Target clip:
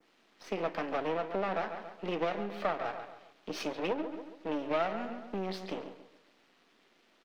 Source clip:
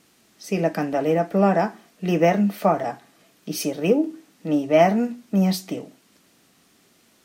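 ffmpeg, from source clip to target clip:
ffmpeg -i in.wav -filter_complex "[0:a]acrossover=split=100|2600[link_01][link_02][link_03];[link_03]acrusher=bits=2:mode=log:mix=0:aa=0.000001[link_04];[link_01][link_02][link_04]amix=inputs=3:normalize=0,aeval=exprs='max(val(0),0)':channel_layout=same,asplit=2[link_05][link_06];[link_06]adelay=138,lowpass=frequency=3400:poles=1,volume=-12.5dB,asplit=2[link_07][link_08];[link_08]adelay=138,lowpass=frequency=3400:poles=1,volume=0.36,asplit=2[link_09][link_10];[link_10]adelay=138,lowpass=frequency=3400:poles=1,volume=0.36,asplit=2[link_11][link_12];[link_12]adelay=138,lowpass=frequency=3400:poles=1,volume=0.36[link_13];[link_07][link_09][link_11][link_13]amix=inputs=4:normalize=0[link_14];[link_05][link_14]amix=inputs=2:normalize=0,adynamicequalizer=threshold=0.00562:dfrequency=3600:dqfactor=0.85:tfrequency=3600:tqfactor=0.85:attack=5:release=100:ratio=0.375:range=2:mode=boostabove:tftype=bell,acompressor=threshold=-27dB:ratio=3,acrossover=split=250 4400:gain=0.158 1 0.0794[link_15][link_16][link_17];[link_15][link_16][link_17]amix=inputs=3:normalize=0" out.wav

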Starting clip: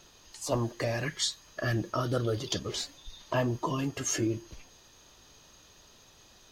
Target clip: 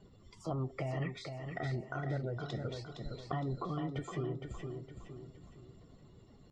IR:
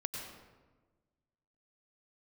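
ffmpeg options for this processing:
-af "asetrate=49501,aresample=44100,atempo=0.890899,acompressor=threshold=-38dB:ratio=10,equalizer=frequency=150:width=0.64:gain=8.5,bandreject=frequency=1600:width=13,afftdn=noise_reduction=14:noise_floor=-54,lowpass=2600,aecho=1:1:463|926|1389|1852|2315:0.501|0.19|0.0724|0.0275|0.0105,adynamicequalizer=threshold=0.00355:dfrequency=200:dqfactor=0.84:tfrequency=200:tqfactor=0.84:attack=5:release=100:ratio=0.375:range=2.5:mode=cutabove:tftype=bell,volume=1dB"

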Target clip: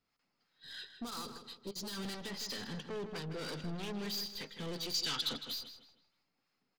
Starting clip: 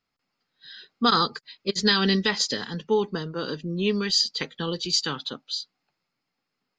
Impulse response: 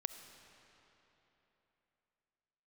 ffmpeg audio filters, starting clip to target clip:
-filter_complex "[0:a]alimiter=limit=-18dB:level=0:latency=1:release=337,aeval=exprs='(tanh(79.4*val(0)+0.25)-tanh(0.25))/79.4':channel_layout=same,asettb=1/sr,asplit=3[link_01][link_02][link_03];[link_01]atrim=end=0.894[link_04];[link_02]atrim=start=0.89:end=1.93,asetpts=PTS-STARTPTS,afade=type=in:duration=0.004:curve=qsin,afade=type=out:start_time=1.036:duration=0.004:curve=qsin,equalizer=frequency=2000:width_type=o:width=1.1:gain=-11.5[link_05];[link_03]atrim=start=1.926[link_06];[link_04][link_05]acrossfade=duration=0.004:curve1=hsin:curve2=qsin[link_07];[link_07][link_06]acrossfade=duration=0.004:curve1=qsin:curve2=hsin,acrossover=split=660[link_08][link_09];[link_08]aeval=exprs='val(0)*(1-0.5/2+0.5/2*cos(2*PI*3*n/s))':channel_layout=same[link_10];[link_09]aeval=exprs='val(0)*(1-0.5/2-0.5/2*cos(2*PI*3*n/s))':channel_layout=same[link_11];[link_10][link_11]amix=inputs=2:normalize=0,asettb=1/sr,asplit=3[link_12][link_13][link_14];[link_12]atrim=end=4.944[link_15];[link_13]atrim=start=4.94:end=5.46,asetpts=PTS-STARTPTS,afade=type=in:duration=0.004:curve=qsin,afade=type=out:start_time=0.516:duration=0.004:curve=qsin,equalizer=frequency=5200:width_type=o:width=2.3:gain=11.5[link_16];[link_14]atrim=start=5.456[link_17];[link_15][link_16]acrossfade=duration=0.004:curve1=hsin:curve2=qsin[link_18];[link_18][link_17]acrossfade=duration=0.004:curve1=qsin:curve2=hsin,asplit=2[link_19][link_20];[link_20]adelay=158,lowpass=frequency=4400:poles=1,volume=-9dB,asplit=2[link_21][link_22];[link_22]adelay=158,lowpass=frequency=4400:poles=1,volume=0.37,asplit=2[link_23][link_24];[link_24]adelay=158,lowpass=frequency=4400:poles=1,volume=0.37,asplit=2[link_25][link_26];[link_26]adelay=158,lowpass=frequency=4400:poles=1,volume=0.37[link_27];[link_19][link_21][link_23][link_25][link_27]amix=inputs=5:normalize=0,volume=1dB"

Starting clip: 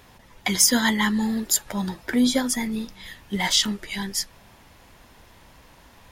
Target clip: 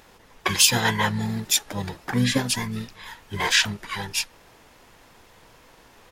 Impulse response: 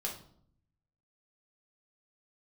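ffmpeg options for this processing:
-filter_complex "[0:a]lowshelf=frequency=290:gain=-7.5,asplit=3[link_01][link_02][link_03];[link_02]asetrate=22050,aresample=44100,atempo=2,volume=0dB[link_04];[link_03]asetrate=35002,aresample=44100,atempo=1.25992,volume=-8dB[link_05];[link_01][link_04][link_05]amix=inputs=3:normalize=0,volume=-2dB"

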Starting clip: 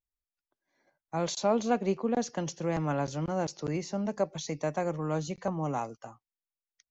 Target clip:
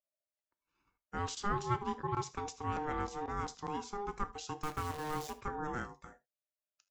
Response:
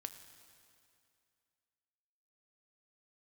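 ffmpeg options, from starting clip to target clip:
-filter_complex "[0:a]asettb=1/sr,asplit=3[link_01][link_02][link_03];[link_01]atrim=end=4.634[link_04];[link_02]atrim=start=4.63:end=5.35,asetpts=PTS-STARTPTS,afade=type=in:duration=0.004:curve=qsin,afade=type=out:start_time=0.716:duration=0.004:curve=qsin,acrusher=bits=7:dc=4:mix=0:aa=0.000001[link_05];[link_03]atrim=start=5.346[link_06];[link_04][link_05]acrossfade=duration=0.004:curve1=hsin:curve2=qsin[link_07];[link_07][link_06]acrossfade=duration=0.004:curve1=qsin:curve2=hsin,aeval=exprs='val(0)*sin(2*PI*610*n/s)':channel_layout=same[link_08];[1:a]atrim=start_sample=2205,atrim=end_sample=3528[link_09];[link_08][link_09]afir=irnorm=-1:irlink=0"

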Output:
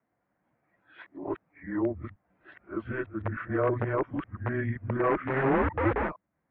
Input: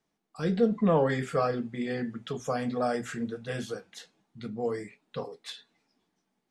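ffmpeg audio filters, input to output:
ffmpeg -i in.wav -filter_complex "[0:a]areverse,asubboost=boost=4:cutoff=240,asplit=2[link_01][link_02];[link_02]aeval=exprs='(mod(9.44*val(0)+1,2)-1)/9.44':channel_layout=same,volume=-3dB[link_03];[link_01][link_03]amix=inputs=2:normalize=0,highpass=frequency=310:width_type=q:width=0.5412,highpass=frequency=310:width_type=q:width=1.307,lowpass=frequency=2200:width_type=q:width=0.5176,lowpass=frequency=2200:width_type=q:width=0.7071,lowpass=frequency=2200:width_type=q:width=1.932,afreqshift=-130" out.wav

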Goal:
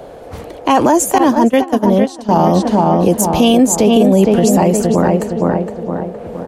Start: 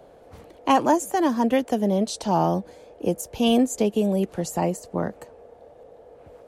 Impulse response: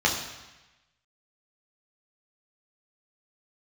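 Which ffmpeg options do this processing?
-filter_complex "[0:a]asplit=2[link_01][link_02];[link_02]adelay=464,lowpass=frequency=2100:poles=1,volume=-5dB,asplit=2[link_03][link_04];[link_04]adelay=464,lowpass=frequency=2100:poles=1,volume=0.49,asplit=2[link_05][link_06];[link_06]adelay=464,lowpass=frequency=2100:poles=1,volume=0.49,asplit=2[link_07][link_08];[link_08]adelay=464,lowpass=frequency=2100:poles=1,volume=0.49,asplit=2[link_09][link_10];[link_10]adelay=464,lowpass=frequency=2100:poles=1,volume=0.49,asplit=2[link_11][link_12];[link_12]adelay=464,lowpass=frequency=2100:poles=1,volume=0.49[link_13];[link_01][link_03][link_05][link_07][link_09][link_11][link_13]amix=inputs=7:normalize=0,asettb=1/sr,asplit=3[link_14][link_15][link_16];[link_14]atrim=end=1.184[link_17];[link_15]atrim=start=1.18:end=2.44,asetpts=PTS-STARTPTS,afade=type=in:duration=0.004:curve=qsin,afade=type=out:start_time=1.256:duration=0.004:curve=qsin,agate=range=-20dB:threshold=-19dB:ratio=16:detection=peak[link_18];[link_16]atrim=start=2.436[link_19];[link_17][link_18]acrossfade=duration=0.004:curve1=hsin:curve2=qsin[link_20];[link_20][link_19]acrossfade=duration=0.004:curve1=qsin:curve2=hsin,alimiter=level_in=17dB:limit=-1dB:release=50:level=0:latency=1,volume=-1dB"

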